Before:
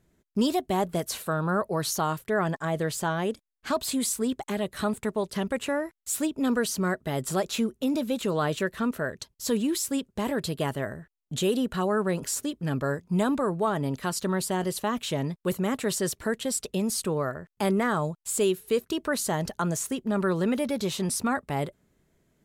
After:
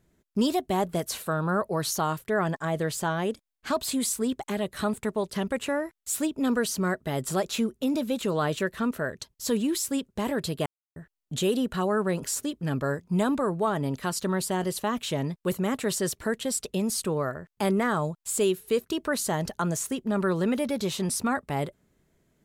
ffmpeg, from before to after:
-filter_complex "[0:a]asplit=3[s0][s1][s2];[s0]atrim=end=10.66,asetpts=PTS-STARTPTS,afade=t=out:st=10.656:d=0.004:c=hsin[s3];[s1]atrim=start=10.66:end=10.96,asetpts=PTS-STARTPTS,volume=0[s4];[s2]atrim=start=10.96,asetpts=PTS-STARTPTS,afade=t=in:d=0.004:c=hsin[s5];[s3][s4][s5]concat=n=3:v=0:a=1"

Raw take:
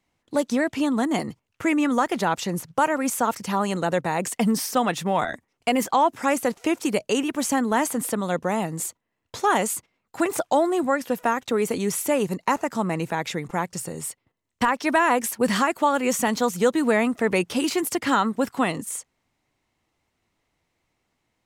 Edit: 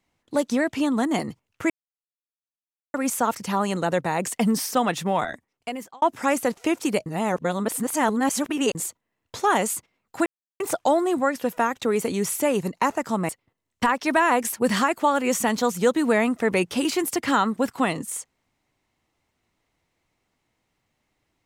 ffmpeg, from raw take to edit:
-filter_complex "[0:a]asplit=8[s0][s1][s2][s3][s4][s5][s6][s7];[s0]atrim=end=1.7,asetpts=PTS-STARTPTS,afade=t=out:st=1.696:d=0.004:c=hsin[s8];[s1]atrim=start=1.7:end=2.94,asetpts=PTS-STARTPTS,volume=0[s9];[s2]atrim=start=2.94:end=6.02,asetpts=PTS-STARTPTS,afade=t=in:d=0.004:c=hsin,afade=t=out:st=2.15:d=0.93[s10];[s3]atrim=start=6.02:end=7.062,asetpts=PTS-STARTPTS,afade=t=in:d=0.004:c=hsin[s11];[s4]atrim=start=7.058:end=8.752,asetpts=PTS-STARTPTS,areverse[s12];[s5]atrim=start=8.748:end=10.26,asetpts=PTS-STARTPTS,afade=t=out:st=1.508:d=0.004:c=hsin,apad=pad_dur=0.34[s13];[s6]atrim=start=10.26:end=12.952,asetpts=PTS-STARTPTS,afade=t=in:d=0.004:c=hsin[s14];[s7]atrim=start=14.078[s15];[s8][s9][s10][s11]concat=n=4:v=0:a=1[s16];[s16][s12]acrossfade=d=0.004:c1=hsin:c2=hsin[s17];[s13][s14]concat=n=2:v=0:a=1[s18];[s17][s18]acrossfade=d=0.004:c1=hsin:c2=hsin[s19];[s19][s15]acrossfade=d=0.004:c1=hsin:c2=hsin"

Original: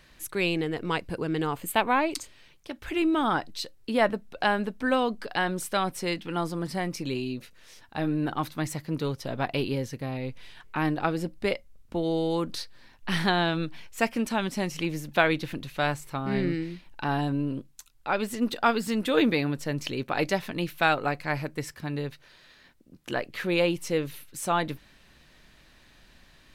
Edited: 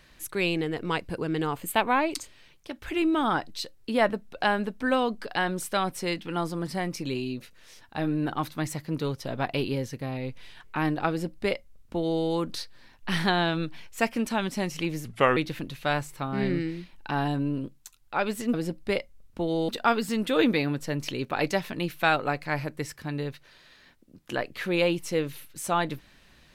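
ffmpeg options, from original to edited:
-filter_complex "[0:a]asplit=5[s0][s1][s2][s3][s4];[s0]atrim=end=15.054[s5];[s1]atrim=start=15.05:end=15.3,asetpts=PTS-STARTPTS,asetrate=34839,aresample=44100[s6];[s2]atrim=start=15.296:end=18.472[s7];[s3]atrim=start=11.088:end=12.242[s8];[s4]atrim=start=18.468[s9];[s5][s6]acrossfade=d=0.004:c1=hsin:c2=hsin[s10];[s10][s7]acrossfade=d=0.004:c1=hsin:c2=hsin[s11];[s11][s8]acrossfade=d=0.004:c1=hsin:c2=hsin[s12];[s12][s9]acrossfade=d=0.004:c1=hsin:c2=hsin"

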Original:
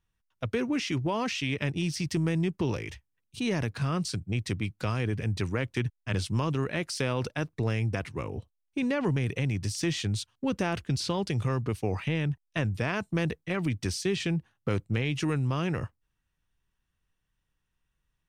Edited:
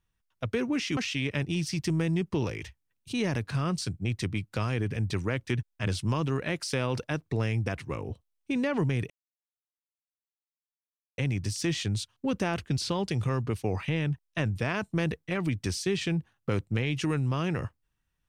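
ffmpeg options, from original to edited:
-filter_complex "[0:a]asplit=3[s0][s1][s2];[s0]atrim=end=0.972[s3];[s1]atrim=start=1.238:end=9.37,asetpts=PTS-STARTPTS,afade=t=out:st=8.128:d=0.004:c=hsin,apad=pad_dur=2.08[s4];[s2]atrim=start=9.37,asetpts=PTS-STARTPTS,afade=t=in:d=0.004:c=hsin[s5];[s4][s5]concat=n=2:v=0:a=1[s6];[s3][s6]acrossfade=d=0.004:c1=hsin:c2=hsin"

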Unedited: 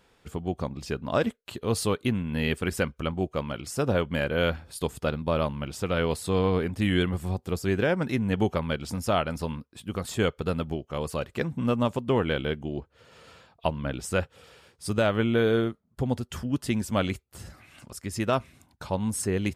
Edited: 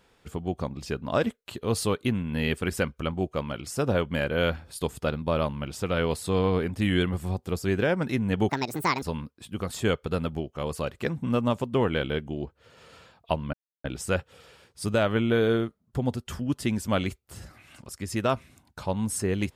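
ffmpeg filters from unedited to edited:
-filter_complex "[0:a]asplit=4[s0][s1][s2][s3];[s0]atrim=end=8.494[s4];[s1]atrim=start=8.49:end=9.37,asetpts=PTS-STARTPTS,asetrate=72765,aresample=44100[s5];[s2]atrim=start=9.366:end=13.88,asetpts=PTS-STARTPTS,afade=t=out:st=4.51:d=0.004:c=hsin,apad=pad_dur=0.31[s6];[s3]atrim=start=13.88,asetpts=PTS-STARTPTS,afade=t=in:d=0.004:c=hsin[s7];[s4][s5]acrossfade=d=0.004:c1=hsin:c2=hsin[s8];[s6][s7]concat=n=2:v=0:a=1[s9];[s8][s9]acrossfade=d=0.004:c1=hsin:c2=hsin"

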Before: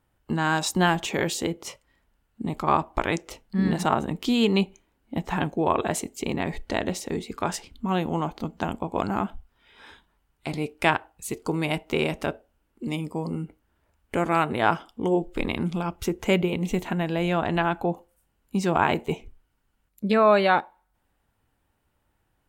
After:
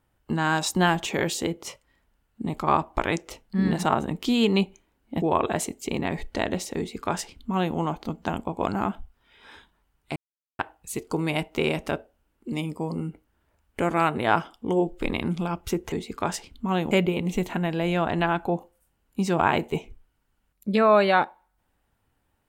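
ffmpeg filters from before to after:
-filter_complex "[0:a]asplit=6[s0][s1][s2][s3][s4][s5];[s0]atrim=end=5.222[s6];[s1]atrim=start=5.568:end=10.51,asetpts=PTS-STARTPTS,afade=t=out:st=4.938:d=0.004:c=hsin[s7];[s2]atrim=start=10.51:end=10.94,asetpts=PTS-STARTPTS,volume=0[s8];[s3]atrim=start=10.94:end=16.272,asetpts=PTS-STARTPTS,afade=t=in:d=0.004:c=hsin[s9];[s4]atrim=start=7.118:end=8.112[s10];[s5]atrim=start=16.268[s11];[s7][s8][s9]concat=n=3:v=0:a=1[s12];[s6][s12]acrossfade=d=0.004:c1=hsin:c2=hsin[s13];[s13][s10]acrossfade=d=0.004:c1=hsin:c2=hsin[s14];[s14][s11]acrossfade=d=0.004:c1=hsin:c2=hsin"

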